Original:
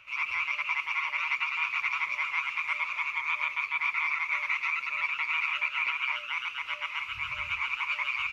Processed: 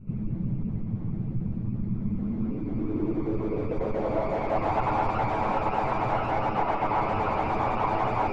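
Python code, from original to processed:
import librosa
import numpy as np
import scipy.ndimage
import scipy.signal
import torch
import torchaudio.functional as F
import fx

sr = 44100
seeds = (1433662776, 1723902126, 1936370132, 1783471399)

y = fx.lower_of_two(x, sr, delay_ms=9.3)
y = fx.recorder_agc(y, sr, target_db=-22.5, rise_db_per_s=67.0, max_gain_db=30)
y = fx.fold_sine(y, sr, drive_db=17, ceiling_db=-15.5)
y = fx.filter_sweep_lowpass(y, sr, from_hz=180.0, to_hz=810.0, start_s=1.92, end_s=4.78, q=3.4)
y = y * librosa.db_to_amplitude(-3.5)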